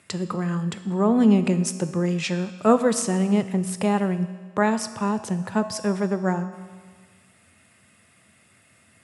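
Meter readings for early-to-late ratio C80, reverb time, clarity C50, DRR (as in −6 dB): 13.0 dB, 1.6 s, 11.5 dB, 10.0 dB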